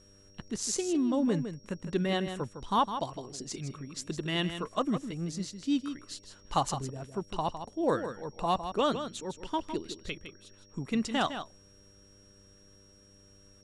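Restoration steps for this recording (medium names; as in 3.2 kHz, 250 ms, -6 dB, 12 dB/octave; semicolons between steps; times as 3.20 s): de-hum 98.7 Hz, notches 6; band-stop 5.6 kHz, Q 30; inverse comb 158 ms -9.5 dB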